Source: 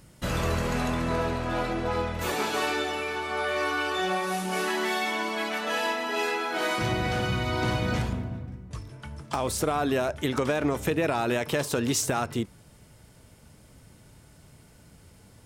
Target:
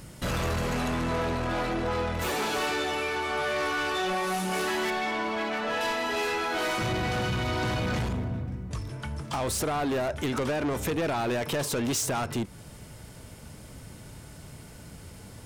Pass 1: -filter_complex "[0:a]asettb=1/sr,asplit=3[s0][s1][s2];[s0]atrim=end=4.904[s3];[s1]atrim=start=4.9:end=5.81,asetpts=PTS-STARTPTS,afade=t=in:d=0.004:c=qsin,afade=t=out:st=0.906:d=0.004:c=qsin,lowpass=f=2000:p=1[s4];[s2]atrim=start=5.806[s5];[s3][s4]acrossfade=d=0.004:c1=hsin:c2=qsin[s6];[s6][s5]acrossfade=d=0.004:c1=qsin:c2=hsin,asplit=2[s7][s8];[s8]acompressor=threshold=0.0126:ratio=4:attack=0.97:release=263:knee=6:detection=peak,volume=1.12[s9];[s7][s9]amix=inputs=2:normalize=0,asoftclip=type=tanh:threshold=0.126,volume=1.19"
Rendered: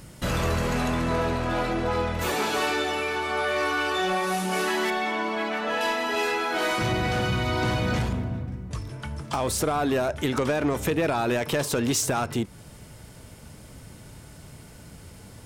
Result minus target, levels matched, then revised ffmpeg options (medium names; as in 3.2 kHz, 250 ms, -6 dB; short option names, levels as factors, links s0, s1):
saturation: distortion -9 dB
-filter_complex "[0:a]asettb=1/sr,asplit=3[s0][s1][s2];[s0]atrim=end=4.904[s3];[s1]atrim=start=4.9:end=5.81,asetpts=PTS-STARTPTS,afade=t=in:d=0.004:c=qsin,afade=t=out:st=0.906:d=0.004:c=qsin,lowpass=f=2000:p=1[s4];[s2]atrim=start=5.806[s5];[s3][s4]acrossfade=d=0.004:c1=hsin:c2=qsin[s6];[s6][s5]acrossfade=d=0.004:c1=qsin:c2=hsin,asplit=2[s7][s8];[s8]acompressor=threshold=0.0126:ratio=4:attack=0.97:release=263:knee=6:detection=peak,volume=1.12[s9];[s7][s9]amix=inputs=2:normalize=0,asoftclip=type=tanh:threshold=0.0501,volume=1.19"